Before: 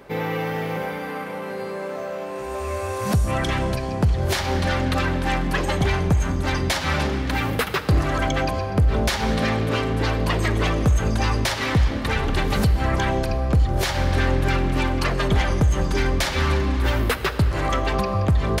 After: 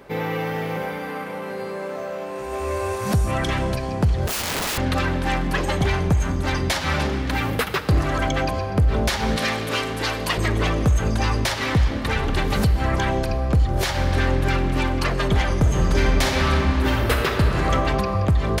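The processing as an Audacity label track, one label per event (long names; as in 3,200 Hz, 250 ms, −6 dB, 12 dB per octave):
2.190000	2.620000	delay throw 330 ms, feedback 50%, level −2.5 dB
4.270000	4.780000	wrap-around overflow gain 20.5 dB
9.360000	10.380000	spectral tilt +2.5 dB per octave
15.580000	17.710000	thrown reverb, RT60 2.2 s, DRR 1.5 dB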